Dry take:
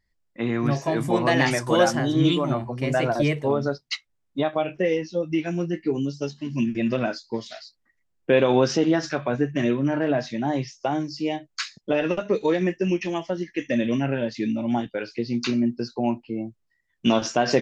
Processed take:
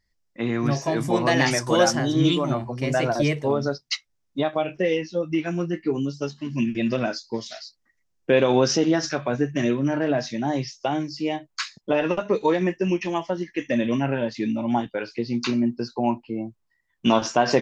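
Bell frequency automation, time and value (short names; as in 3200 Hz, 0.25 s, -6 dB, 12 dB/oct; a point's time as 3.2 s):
bell +7 dB 0.63 oct
4.76 s 5600 Hz
5.24 s 1200 Hz
6.47 s 1200 Hz
6.95 s 5800 Hz
10.59 s 5800 Hz
11.46 s 970 Hz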